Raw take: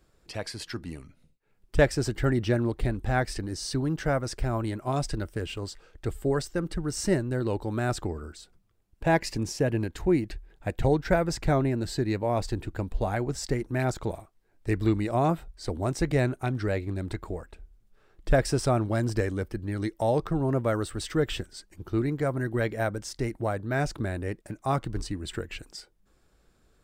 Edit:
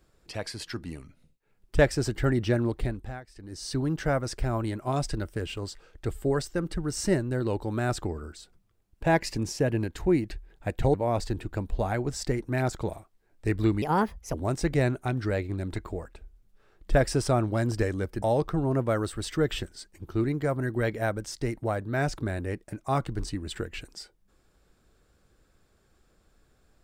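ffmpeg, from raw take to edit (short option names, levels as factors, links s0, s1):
-filter_complex "[0:a]asplit=7[s0][s1][s2][s3][s4][s5][s6];[s0]atrim=end=3.21,asetpts=PTS-STARTPTS,afade=t=out:st=2.75:d=0.46:silence=0.1[s7];[s1]atrim=start=3.21:end=3.34,asetpts=PTS-STARTPTS,volume=0.1[s8];[s2]atrim=start=3.34:end=10.942,asetpts=PTS-STARTPTS,afade=t=in:d=0.46:silence=0.1[s9];[s3]atrim=start=12.158:end=15.044[s10];[s4]atrim=start=15.04:end=15.72,asetpts=PTS-STARTPTS,asetrate=57330,aresample=44100[s11];[s5]atrim=start=15.716:end=19.602[s12];[s6]atrim=start=19.998[s13];[s7][s8][s9]concat=n=3:v=0:a=1[s14];[s14][s10]acrossfade=d=0.004:c1=hsin:c2=hsin[s15];[s15][s11]acrossfade=d=0.004:c1=hsin:c2=hsin[s16];[s16][s12]acrossfade=d=0.004:c1=hsin:c2=hsin[s17];[s17][s13]acrossfade=d=0.004:c1=hsin:c2=hsin"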